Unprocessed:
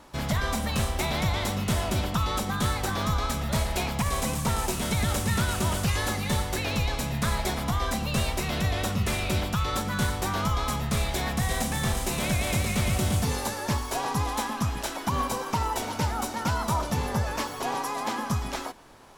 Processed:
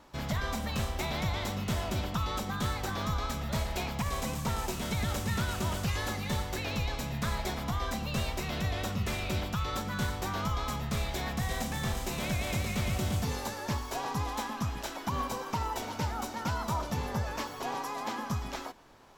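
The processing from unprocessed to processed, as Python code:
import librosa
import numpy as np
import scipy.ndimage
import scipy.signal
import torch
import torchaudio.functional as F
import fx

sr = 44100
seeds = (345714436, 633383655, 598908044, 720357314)

y = fx.peak_eq(x, sr, hz=9700.0, db=-8.5, octaves=0.42)
y = y * librosa.db_to_amplitude(-5.5)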